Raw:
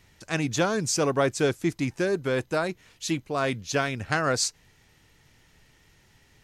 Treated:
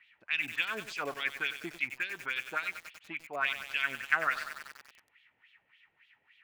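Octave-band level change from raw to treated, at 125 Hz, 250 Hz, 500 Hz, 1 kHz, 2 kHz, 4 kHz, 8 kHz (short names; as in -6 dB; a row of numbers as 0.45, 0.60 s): -26.5, -21.0, -18.5, -7.0, +0.5, -6.0, -21.5 dB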